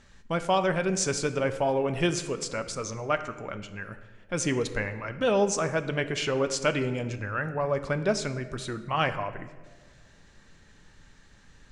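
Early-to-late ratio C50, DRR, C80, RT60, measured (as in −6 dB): 12.0 dB, 9.0 dB, 13.5 dB, 1.6 s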